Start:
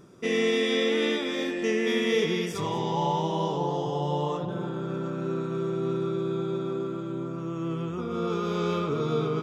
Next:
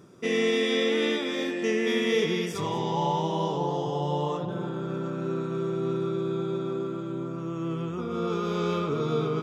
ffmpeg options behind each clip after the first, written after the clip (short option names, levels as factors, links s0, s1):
-af "highpass=62"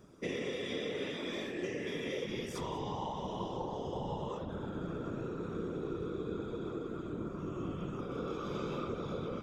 -af "acompressor=threshold=0.0355:ratio=6,afftfilt=real='hypot(re,im)*cos(2*PI*random(0))':imag='hypot(re,im)*sin(2*PI*random(1))':win_size=512:overlap=0.75"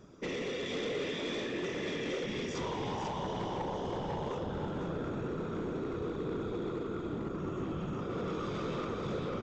-af "aresample=16000,asoftclip=type=hard:threshold=0.0158,aresample=44100,aecho=1:1:494:0.501,volume=1.41"